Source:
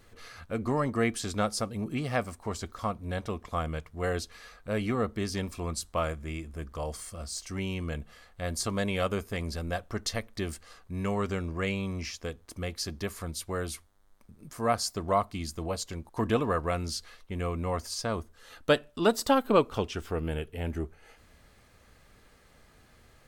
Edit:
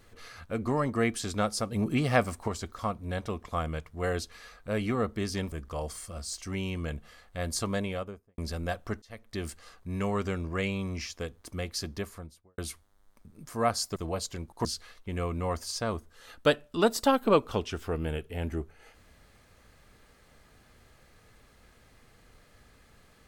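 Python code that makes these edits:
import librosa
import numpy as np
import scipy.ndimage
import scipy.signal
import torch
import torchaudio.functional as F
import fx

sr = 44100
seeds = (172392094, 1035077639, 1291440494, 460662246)

y = fx.studio_fade_out(x, sr, start_s=8.67, length_s=0.75)
y = fx.studio_fade_out(y, sr, start_s=12.89, length_s=0.73)
y = fx.edit(y, sr, fx.clip_gain(start_s=1.72, length_s=0.76, db=5.0),
    fx.cut(start_s=5.52, length_s=1.04),
    fx.fade_in_span(start_s=10.06, length_s=0.46),
    fx.cut(start_s=15.0, length_s=0.53),
    fx.cut(start_s=16.22, length_s=0.66), tone=tone)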